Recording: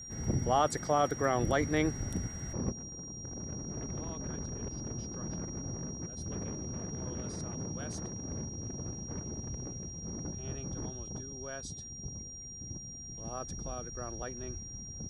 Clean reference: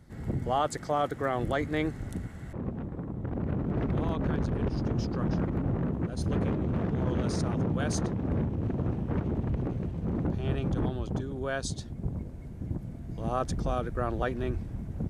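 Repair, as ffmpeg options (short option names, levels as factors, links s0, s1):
-af "bandreject=f=5700:w=30,asetnsamples=n=441:p=0,asendcmd='2.72 volume volume 11dB',volume=1"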